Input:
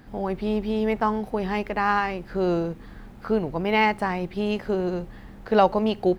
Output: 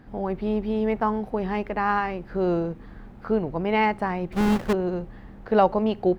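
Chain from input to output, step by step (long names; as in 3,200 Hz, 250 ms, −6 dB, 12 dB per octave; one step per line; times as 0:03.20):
0:04.32–0:04.73: each half-wave held at its own peak
high-shelf EQ 3,200 Hz −11.5 dB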